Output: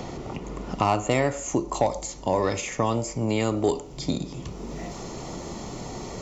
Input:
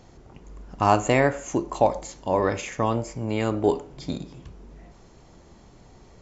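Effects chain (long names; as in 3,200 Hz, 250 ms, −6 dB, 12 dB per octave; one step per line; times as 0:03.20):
bass and treble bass 0 dB, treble −4 dB, from 0:01.10 treble +9 dB
soft clipping −8.5 dBFS, distortion −20 dB
notch filter 1,600 Hz, Q 5.1
multiband upward and downward compressor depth 70%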